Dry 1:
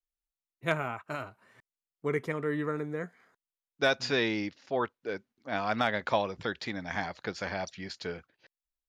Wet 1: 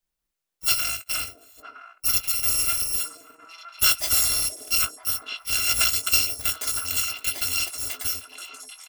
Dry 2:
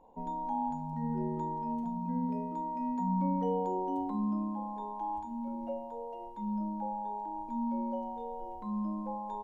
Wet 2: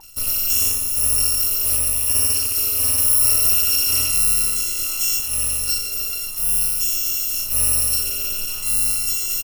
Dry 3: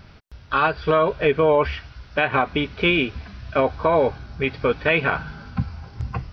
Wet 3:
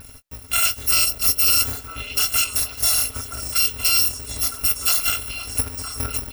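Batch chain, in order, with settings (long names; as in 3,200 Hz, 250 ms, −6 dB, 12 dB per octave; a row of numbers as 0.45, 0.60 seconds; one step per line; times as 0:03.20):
samples in bit-reversed order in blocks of 256 samples
in parallel at −1.5 dB: downward compressor, threshold −31 dBFS
on the sum: double-tracking delay 19 ms −12 dB
echo through a band-pass that steps 482 ms, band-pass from 410 Hz, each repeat 1.4 octaves, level −2 dB
normalise the peak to −6 dBFS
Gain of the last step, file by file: +4.0, +10.5, −1.5 decibels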